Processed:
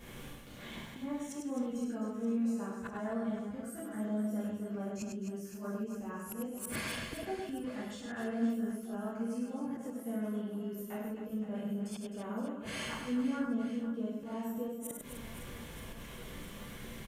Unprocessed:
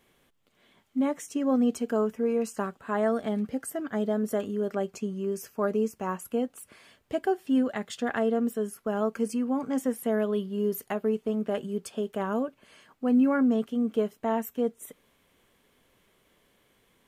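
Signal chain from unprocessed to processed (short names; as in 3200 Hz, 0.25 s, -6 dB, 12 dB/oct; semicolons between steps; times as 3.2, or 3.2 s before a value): low shelf 200 Hz +11 dB; in parallel at +1.5 dB: compressor, threshold -34 dBFS, peak gain reduction 18 dB; on the sum: non-linear reverb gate 90 ms flat, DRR -7 dB; flipped gate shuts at -19 dBFS, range -24 dB; auto swell 0.101 s; on a send: reverse bouncing-ball echo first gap 0.1 s, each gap 1.6×, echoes 5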